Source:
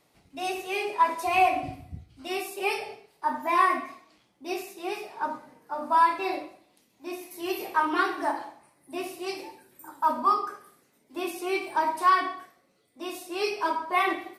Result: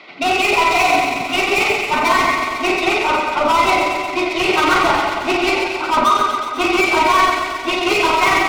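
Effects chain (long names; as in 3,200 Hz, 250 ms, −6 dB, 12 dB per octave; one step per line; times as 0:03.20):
loudspeaker in its box 230–4,300 Hz, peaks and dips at 500 Hz −6 dB, 900 Hz −6 dB, 2,200 Hz +6 dB
mid-hump overdrive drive 37 dB, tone 3,300 Hz, clips at −7.5 dBFS
Butterworth band-reject 1,700 Hz, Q 6.2
delay that swaps between a low-pass and a high-pass 106 ms, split 1,600 Hz, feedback 83%, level −3 dB
time stretch by overlap-add 0.59×, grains 90 ms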